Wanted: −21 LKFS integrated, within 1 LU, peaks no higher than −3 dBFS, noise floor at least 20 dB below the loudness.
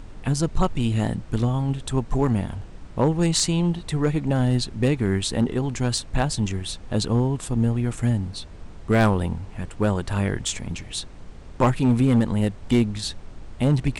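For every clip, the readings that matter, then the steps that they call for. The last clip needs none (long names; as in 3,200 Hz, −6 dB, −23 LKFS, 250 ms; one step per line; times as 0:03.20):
share of clipped samples 0.6%; peaks flattened at −11.5 dBFS; background noise floor −41 dBFS; target noise floor −44 dBFS; integrated loudness −23.5 LKFS; sample peak −11.5 dBFS; target loudness −21.0 LKFS
→ clipped peaks rebuilt −11.5 dBFS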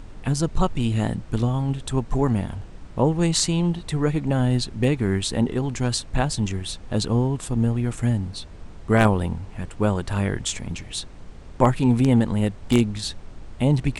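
share of clipped samples 0.0%; background noise floor −41 dBFS; target noise floor −44 dBFS
→ noise reduction from a noise print 6 dB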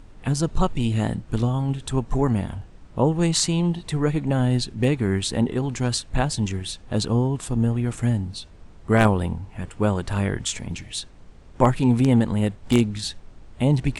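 background noise floor −46 dBFS; integrated loudness −23.5 LKFS; sample peak −2.5 dBFS; target loudness −21.0 LKFS
→ level +2.5 dB
brickwall limiter −3 dBFS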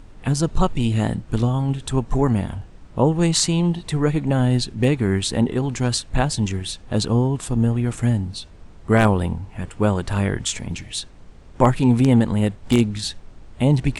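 integrated loudness −21.0 LKFS; sample peak −3.0 dBFS; background noise floor −44 dBFS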